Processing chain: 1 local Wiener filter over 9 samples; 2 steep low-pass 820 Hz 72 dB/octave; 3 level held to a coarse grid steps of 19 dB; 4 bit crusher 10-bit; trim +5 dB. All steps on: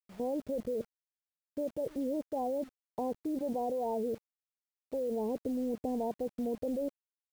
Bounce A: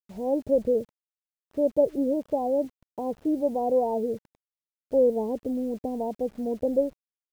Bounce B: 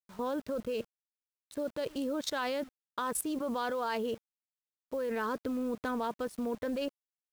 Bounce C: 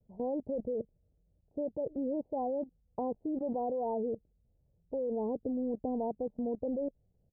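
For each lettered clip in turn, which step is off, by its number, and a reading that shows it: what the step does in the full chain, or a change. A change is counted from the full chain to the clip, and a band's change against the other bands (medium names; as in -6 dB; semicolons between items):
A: 3, crest factor change +4.0 dB; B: 2, 1 kHz band +4.0 dB; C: 4, distortion -26 dB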